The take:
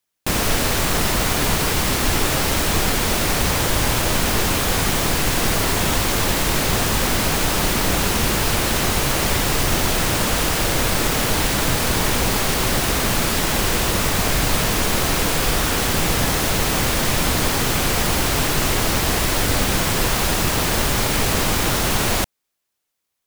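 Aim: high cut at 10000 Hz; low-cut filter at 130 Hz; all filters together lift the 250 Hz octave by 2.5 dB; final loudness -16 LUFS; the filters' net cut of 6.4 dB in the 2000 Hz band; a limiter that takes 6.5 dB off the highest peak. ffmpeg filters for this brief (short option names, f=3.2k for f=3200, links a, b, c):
-af "highpass=130,lowpass=10k,equalizer=f=250:t=o:g=4,equalizer=f=2k:t=o:g=-8.5,volume=7.5dB,alimiter=limit=-7dB:level=0:latency=1"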